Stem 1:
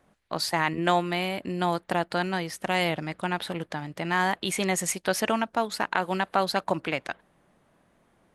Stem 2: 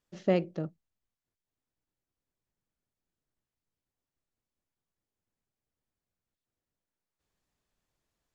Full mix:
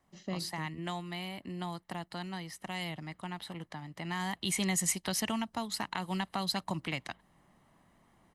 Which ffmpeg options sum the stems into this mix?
-filter_complex "[0:a]volume=-2dB,afade=t=in:st=3.9:d=0.66:silence=0.421697[a];[1:a]highshelf=f=2.8k:g=9,volume=-8.5dB[b];[a][b]amix=inputs=2:normalize=0,aecho=1:1:1:0.44,acrossover=split=230|3000[c][d][e];[d]acompressor=threshold=-43dB:ratio=2[f];[c][f][e]amix=inputs=3:normalize=0"

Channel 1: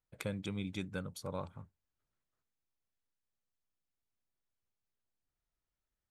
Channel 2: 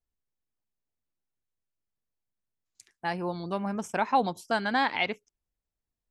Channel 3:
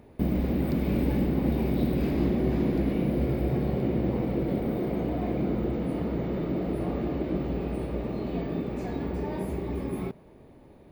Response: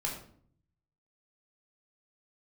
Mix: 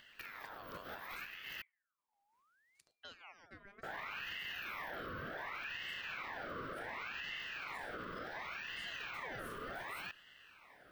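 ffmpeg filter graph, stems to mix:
-filter_complex "[0:a]volume=-13.5dB,asplit=3[a][b][c];[b]volume=-21dB[d];[1:a]highshelf=f=7.8k:g=-10.5,alimiter=limit=-20.5dB:level=0:latency=1,acompressor=threshold=-35dB:ratio=2,volume=-13dB,asplit=2[e][f];[f]volume=-21.5dB[g];[2:a]asoftclip=type=tanh:threshold=-20.5dB,volume=1.5dB,asplit=3[h][i][j];[h]atrim=end=1.62,asetpts=PTS-STARTPTS,afade=t=out:st=1.616:d=0.004:c=hsin[k];[i]atrim=start=1.62:end=3.83,asetpts=PTS-STARTPTS,volume=0[l];[j]atrim=start=3.83,asetpts=PTS-STARTPTS,afade=t=in:d=0.004:c=hsin[m];[k][l][m]concat=n=3:v=0:a=1[n];[c]apad=whole_len=481486[o];[n][o]sidechaincompress=threshold=-60dB:ratio=8:attack=6.1:release=123[p];[e][p]amix=inputs=2:normalize=0,highpass=550,alimiter=level_in=10dB:limit=-24dB:level=0:latency=1:release=39,volume=-10dB,volume=0dB[q];[3:a]atrim=start_sample=2205[r];[d][g]amix=inputs=2:normalize=0[s];[s][r]afir=irnorm=-1:irlink=0[t];[a][q][t]amix=inputs=3:normalize=0,acompressor=mode=upward:threshold=-59dB:ratio=2.5,aeval=exprs='val(0)*sin(2*PI*1600*n/s+1600*0.5/0.68*sin(2*PI*0.68*n/s))':c=same"

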